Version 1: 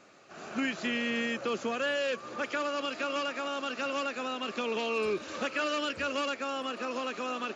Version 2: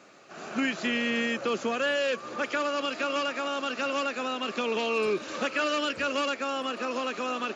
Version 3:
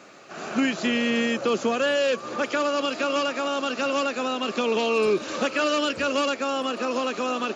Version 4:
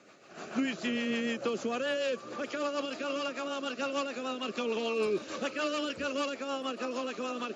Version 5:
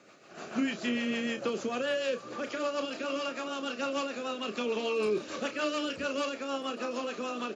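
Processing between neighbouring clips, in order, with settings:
high-pass 110 Hz; trim +3.5 dB
dynamic bell 1.9 kHz, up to -5 dB, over -41 dBFS, Q 0.99; trim +6 dB
rotary cabinet horn 6.7 Hz; trim -6.5 dB
doubling 33 ms -9 dB

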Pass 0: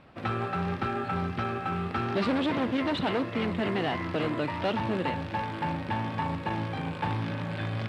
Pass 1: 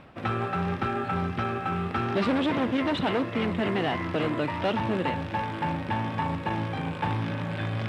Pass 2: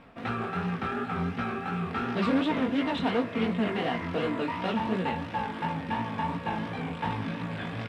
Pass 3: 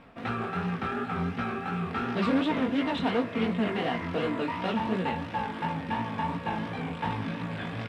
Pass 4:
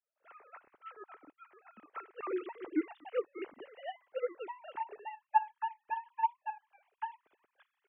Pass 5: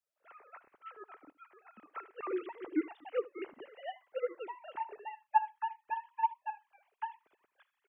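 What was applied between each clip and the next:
reverse; upward compressor, threshold -33 dBFS; reverse; peaking EQ 4.4 kHz -4.5 dB 0.26 oct; trim +2 dB
comb 4.3 ms, depth 47%; chorus 2.8 Hz, delay 16 ms, depth 7.5 ms
no audible change
formants replaced by sine waves; upward expansion 2.5:1, over -46 dBFS; trim -2 dB
delay 75 ms -20 dB

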